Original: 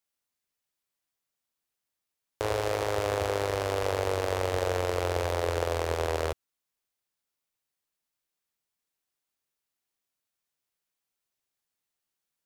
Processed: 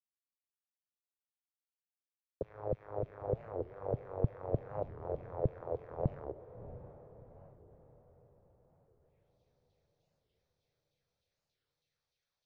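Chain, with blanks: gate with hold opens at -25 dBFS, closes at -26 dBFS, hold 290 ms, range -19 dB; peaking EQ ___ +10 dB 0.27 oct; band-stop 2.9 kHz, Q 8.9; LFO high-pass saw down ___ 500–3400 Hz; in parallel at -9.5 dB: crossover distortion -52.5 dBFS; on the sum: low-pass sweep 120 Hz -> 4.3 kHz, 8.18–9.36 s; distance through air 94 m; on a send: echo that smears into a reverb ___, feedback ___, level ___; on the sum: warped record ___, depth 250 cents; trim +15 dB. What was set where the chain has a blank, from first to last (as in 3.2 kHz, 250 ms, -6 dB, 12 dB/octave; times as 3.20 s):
6 kHz, 3.3 Hz, 667 ms, 48%, -13 dB, 45 rpm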